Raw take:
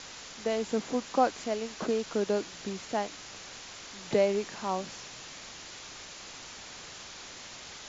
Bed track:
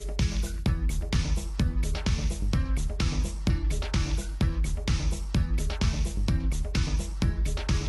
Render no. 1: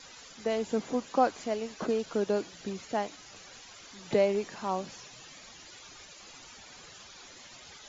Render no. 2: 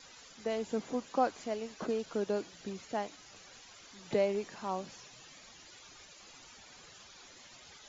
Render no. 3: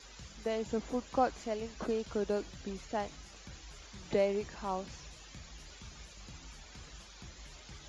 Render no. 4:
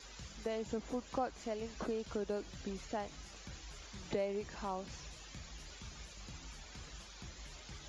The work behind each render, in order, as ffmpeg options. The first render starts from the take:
ffmpeg -i in.wav -af "afftdn=noise_reduction=12:noise_floor=-46" out.wav
ffmpeg -i in.wav -af "volume=-4.5dB" out.wav
ffmpeg -i in.wav -i bed.wav -filter_complex "[1:a]volume=-26dB[link_01];[0:a][link_01]amix=inputs=2:normalize=0" out.wav
ffmpeg -i in.wav -af "acompressor=threshold=-38dB:ratio=2" out.wav

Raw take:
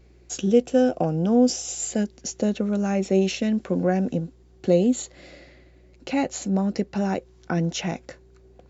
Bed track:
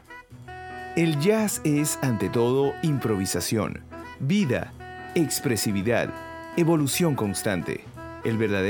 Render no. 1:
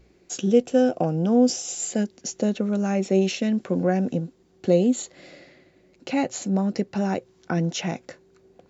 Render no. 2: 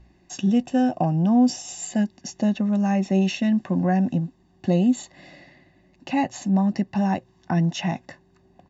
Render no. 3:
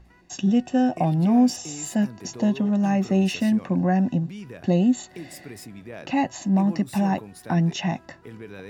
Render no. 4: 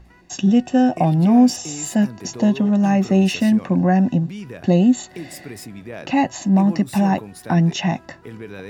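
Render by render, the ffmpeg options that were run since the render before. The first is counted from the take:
ffmpeg -i in.wav -af "bandreject=frequency=60:width_type=h:width=4,bandreject=frequency=120:width_type=h:width=4" out.wav
ffmpeg -i in.wav -af "lowpass=frequency=3100:poles=1,aecho=1:1:1.1:0.85" out.wav
ffmpeg -i in.wav -i bed.wav -filter_complex "[1:a]volume=-16dB[link_01];[0:a][link_01]amix=inputs=2:normalize=0" out.wav
ffmpeg -i in.wav -af "volume=5dB" out.wav

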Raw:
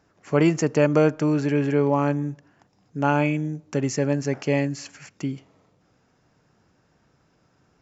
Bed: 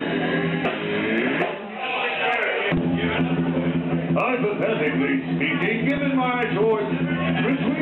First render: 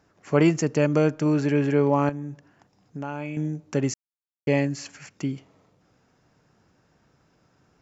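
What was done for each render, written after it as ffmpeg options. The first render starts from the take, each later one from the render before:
ffmpeg -i in.wav -filter_complex "[0:a]asettb=1/sr,asplit=3[link_01][link_02][link_03];[link_01]atrim=end=0.514[link_04];[link_02]atrim=start=0.51:end=1.26,asetpts=PTS-STARTPTS,afade=type=in:duration=0.004:curve=qsin,afade=type=out:start_time=0.746:duration=0.004:curve=qsin,equalizer=frequency=910:width_type=o:width=2.6:gain=-4.5[link_05];[link_03]atrim=start=1.256[link_06];[link_04][link_05]acrossfade=duration=0.004:curve1=hsin:curve2=qsin[link_07];[link_07][link_06]acrossfade=duration=0.004:curve1=qsin:curve2=hsin,asettb=1/sr,asplit=3[link_08][link_09][link_10];[link_08]atrim=end=2.094[link_11];[link_09]atrim=start=2.09:end=3.37,asetpts=PTS-STARTPTS,afade=type=in:duration=0.004:curve=qsin,afade=type=out:start_time=1.276:duration=0.004:curve=qsin,acompressor=threshold=-31dB:ratio=3:attack=3.2:release=140:knee=1:detection=peak[link_12];[link_10]atrim=start=3.366[link_13];[link_11][link_12]acrossfade=duration=0.004:curve1=hsin:curve2=qsin[link_14];[link_14][link_13]acrossfade=duration=0.004:curve1=qsin:curve2=hsin,asplit=3[link_15][link_16][link_17];[link_15]atrim=end=3.94,asetpts=PTS-STARTPTS,afade=type=out:start_time=3.936:duration=0.004:curve=hsin[link_18];[link_16]atrim=start=3.94:end=4.47,asetpts=PTS-STARTPTS,volume=0[link_19];[link_17]atrim=start=4.47,asetpts=PTS-STARTPTS,afade=type=in:duration=0.004:curve=hsin[link_20];[link_18][link_19][link_20]concat=n=3:v=0:a=1" out.wav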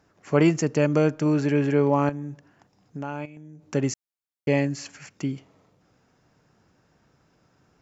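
ffmpeg -i in.wav -filter_complex "[0:a]asettb=1/sr,asplit=3[link_01][link_02][link_03];[link_01]atrim=end=3.254[link_04];[link_02]atrim=start=3.25:end=3.72,asetpts=PTS-STARTPTS,afade=type=in:duration=0.004:curve=qsin,afade=type=out:start_time=0.466:duration=0.004:curve=qsin,acompressor=threshold=-40dB:ratio=16:attack=3.2:release=140:knee=1:detection=peak[link_05];[link_03]atrim=start=3.716[link_06];[link_04][link_05]acrossfade=duration=0.004:curve1=hsin:curve2=qsin[link_07];[link_07][link_06]acrossfade=duration=0.004:curve1=qsin:curve2=hsin" out.wav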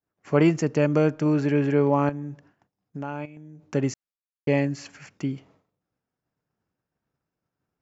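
ffmpeg -i in.wav -af "agate=range=-33dB:threshold=-50dB:ratio=3:detection=peak,highshelf=frequency=6900:gain=-11.5" out.wav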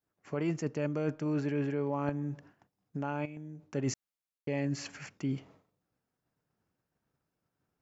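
ffmpeg -i in.wav -af "alimiter=limit=-12.5dB:level=0:latency=1:release=336,areverse,acompressor=threshold=-29dB:ratio=6,areverse" out.wav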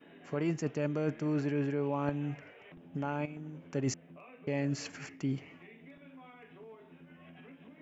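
ffmpeg -i in.wav -i bed.wav -filter_complex "[1:a]volume=-32dB[link_01];[0:a][link_01]amix=inputs=2:normalize=0" out.wav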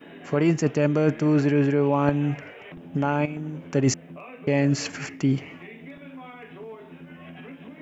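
ffmpeg -i in.wav -af "volume=11.5dB" out.wav

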